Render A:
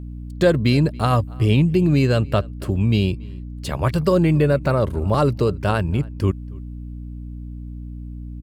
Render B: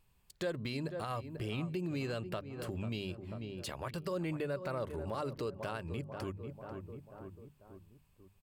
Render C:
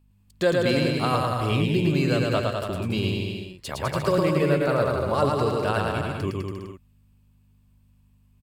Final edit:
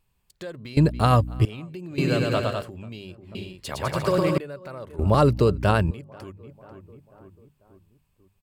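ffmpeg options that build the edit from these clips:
-filter_complex "[0:a]asplit=2[a][b];[2:a]asplit=2[c][d];[1:a]asplit=5[e][f][g][h][i];[e]atrim=end=0.772[j];[a]atrim=start=0.768:end=1.452[k];[f]atrim=start=1.448:end=1.982[l];[c]atrim=start=1.978:end=2.622[m];[g]atrim=start=2.618:end=3.352[n];[d]atrim=start=3.348:end=4.382[o];[h]atrim=start=4.378:end=4.992[p];[b]atrim=start=4.988:end=5.912[q];[i]atrim=start=5.908[r];[j][k]acrossfade=d=0.004:c1=hsin:c2=hsin[s];[s][l]acrossfade=d=0.004:c1=hsin:c2=hsin[t];[t][m]acrossfade=d=0.004:c1=hsin:c2=hsin[u];[u][n]acrossfade=d=0.004:c1=hsin:c2=hsin[v];[v][o]acrossfade=d=0.004:c1=hsin:c2=hsin[w];[w][p]acrossfade=d=0.004:c1=hsin:c2=hsin[x];[x][q]acrossfade=d=0.004:c1=hsin:c2=hsin[y];[y][r]acrossfade=d=0.004:c1=hsin:c2=hsin"

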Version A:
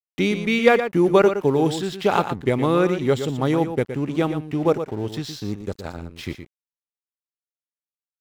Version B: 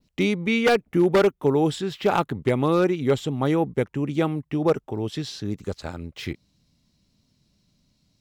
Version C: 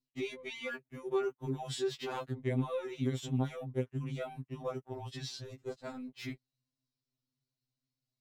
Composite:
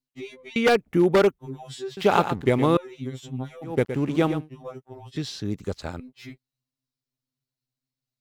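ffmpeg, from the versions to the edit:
-filter_complex "[1:a]asplit=2[a][b];[0:a]asplit=2[c][d];[2:a]asplit=5[e][f][g][h][i];[e]atrim=end=0.562[j];[a]atrim=start=0.558:end=1.392[k];[f]atrim=start=1.388:end=1.972[l];[c]atrim=start=1.968:end=2.772[m];[g]atrim=start=2.768:end=3.77[n];[d]atrim=start=3.61:end=4.5[o];[h]atrim=start=4.34:end=5.162[p];[b]atrim=start=5.158:end=6.002[q];[i]atrim=start=5.998[r];[j][k]acrossfade=d=0.004:c1=hsin:c2=hsin[s];[s][l]acrossfade=d=0.004:c1=hsin:c2=hsin[t];[t][m]acrossfade=d=0.004:c1=hsin:c2=hsin[u];[u][n]acrossfade=d=0.004:c1=hsin:c2=hsin[v];[v][o]acrossfade=d=0.16:c1=tri:c2=tri[w];[w][p]acrossfade=d=0.16:c1=tri:c2=tri[x];[x][q]acrossfade=d=0.004:c1=hsin:c2=hsin[y];[y][r]acrossfade=d=0.004:c1=hsin:c2=hsin"

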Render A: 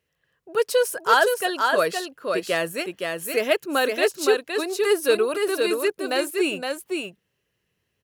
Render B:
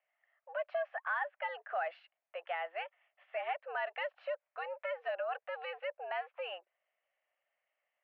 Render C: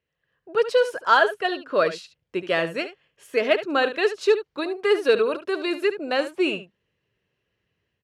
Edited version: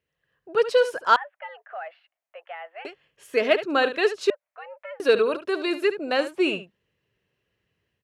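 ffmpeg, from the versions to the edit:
-filter_complex "[1:a]asplit=2[a][b];[2:a]asplit=3[c][d][e];[c]atrim=end=1.162[f];[a]atrim=start=1.158:end=2.852[g];[d]atrim=start=2.848:end=4.302[h];[b]atrim=start=4.298:end=5.002[i];[e]atrim=start=4.998[j];[f][g]acrossfade=d=0.004:c1=hsin:c2=hsin[k];[k][h]acrossfade=d=0.004:c1=hsin:c2=hsin[l];[l][i]acrossfade=d=0.004:c1=hsin:c2=hsin[m];[m][j]acrossfade=d=0.004:c1=hsin:c2=hsin"

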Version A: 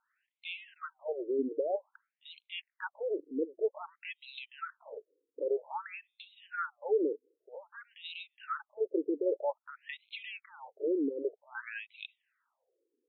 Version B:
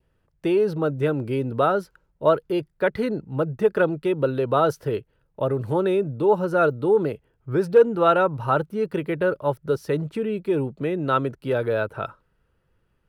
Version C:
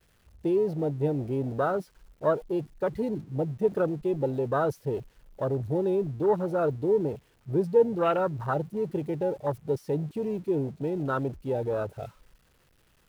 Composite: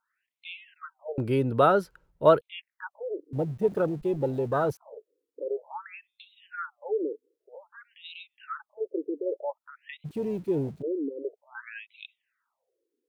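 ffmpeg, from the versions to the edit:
-filter_complex "[2:a]asplit=2[a][b];[0:a]asplit=4[c][d][e][f];[c]atrim=end=1.182[g];[1:a]atrim=start=1.178:end=2.412[h];[d]atrim=start=2.408:end=3.332[i];[a]atrim=start=3.328:end=4.772[j];[e]atrim=start=4.768:end=10.06[k];[b]atrim=start=10.04:end=10.83[l];[f]atrim=start=10.81[m];[g][h]acrossfade=d=0.004:c1=hsin:c2=hsin[n];[n][i]acrossfade=d=0.004:c1=hsin:c2=hsin[o];[o][j]acrossfade=d=0.004:c1=hsin:c2=hsin[p];[p][k]acrossfade=d=0.004:c1=hsin:c2=hsin[q];[q][l]acrossfade=d=0.02:c1=tri:c2=tri[r];[r][m]acrossfade=d=0.02:c1=tri:c2=tri"

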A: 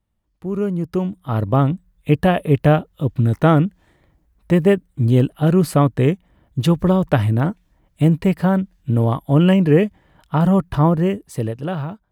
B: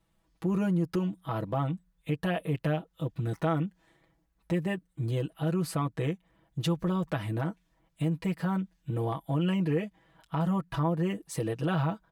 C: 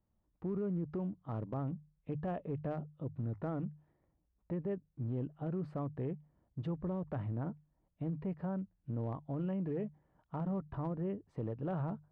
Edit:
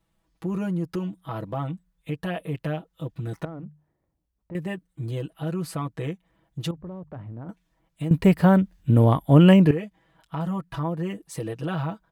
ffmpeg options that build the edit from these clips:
-filter_complex "[2:a]asplit=2[a][b];[1:a]asplit=4[c][d][e][f];[c]atrim=end=3.452[g];[a]atrim=start=3.448:end=4.552[h];[d]atrim=start=4.548:end=6.712[i];[b]atrim=start=6.708:end=7.492[j];[e]atrim=start=7.488:end=8.112[k];[0:a]atrim=start=8.108:end=9.712[l];[f]atrim=start=9.708[m];[g][h]acrossfade=d=0.004:c1=hsin:c2=hsin[n];[n][i]acrossfade=d=0.004:c1=hsin:c2=hsin[o];[o][j]acrossfade=d=0.004:c1=hsin:c2=hsin[p];[p][k]acrossfade=d=0.004:c1=hsin:c2=hsin[q];[q][l]acrossfade=d=0.004:c1=hsin:c2=hsin[r];[r][m]acrossfade=d=0.004:c1=hsin:c2=hsin"

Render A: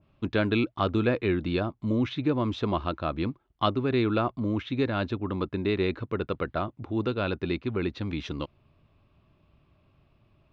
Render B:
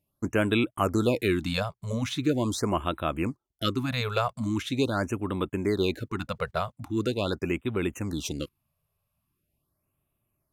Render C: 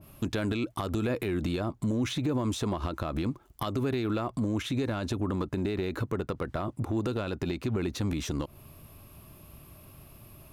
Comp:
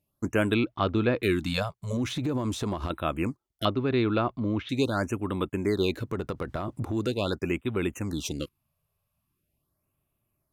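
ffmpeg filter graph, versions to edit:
-filter_complex "[0:a]asplit=2[a][b];[2:a]asplit=2[c][d];[1:a]asplit=5[e][f][g][h][i];[e]atrim=end=0.542[j];[a]atrim=start=0.538:end=1.232[k];[f]atrim=start=1.228:end=1.972[l];[c]atrim=start=1.968:end=2.902[m];[g]atrim=start=2.898:end=3.652[n];[b]atrim=start=3.648:end=4.692[o];[h]atrim=start=4.688:end=6.17[p];[d]atrim=start=5.93:end=7.13[q];[i]atrim=start=6.89[r];[j][k]acrossfade=d=0.004:c1=hsin:c2=hsin[s];[s][l]acrossfade=d=0.004:c1=hsin:c2=hsin[t];[t][m]acrossfade=d=0.004:c1=hsin:c2=hsin[u];[u][n]acrossfade=d=0.004:c1=hsin:c2=hsin[v];[v][o]acrossfade=d=0.004:c1=hsin:c2=hsin[w];[w][p]acrossfade=d=0.004:c1=hsin:c2=hsin[x];[x][q]acrossfade=d=0.24:c1=tri:c2=tri[y];[y][r]acrossfade=d=0.24:c1=tri:c2=tri"

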